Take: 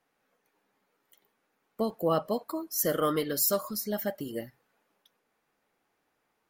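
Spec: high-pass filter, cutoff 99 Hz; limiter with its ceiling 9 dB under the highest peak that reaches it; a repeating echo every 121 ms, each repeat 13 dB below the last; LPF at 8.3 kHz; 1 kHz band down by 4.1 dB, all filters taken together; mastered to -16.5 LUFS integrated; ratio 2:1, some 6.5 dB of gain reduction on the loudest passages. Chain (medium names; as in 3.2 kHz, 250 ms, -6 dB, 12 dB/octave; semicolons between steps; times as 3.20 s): high-pass 99 Hz; low-pass 8.3 kHz; peaking EQ 1 kHz -5.5 dB; compression 2:1, threshold -36 dBFS; peak limiter -32 dBFS; feedback delay 121 ms, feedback 22%, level -13 dB; trim +25.5 dB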